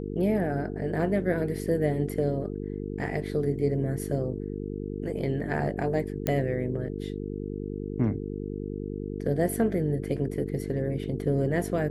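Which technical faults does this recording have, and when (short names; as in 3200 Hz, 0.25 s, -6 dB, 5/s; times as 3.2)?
buzz 50 Hz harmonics 9 -34 dBFS
6.27 pop -12 dBFS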